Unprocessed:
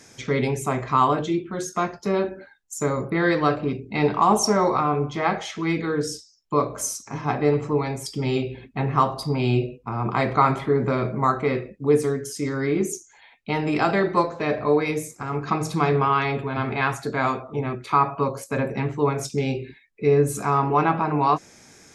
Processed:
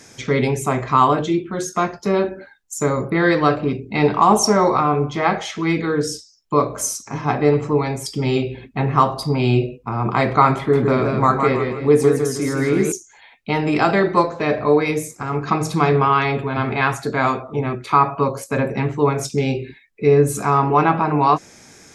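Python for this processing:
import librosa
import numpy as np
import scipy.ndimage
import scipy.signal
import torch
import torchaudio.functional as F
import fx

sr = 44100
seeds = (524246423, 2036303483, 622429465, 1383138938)

y = fx.echo_warbled(x, sr, ms=159, feedback_pct=38, rate_hz=2.8, cents=88, wet_db=-5, at=(10.57, 12.92))
y = y * librosa.db_to_amplitude(4.5)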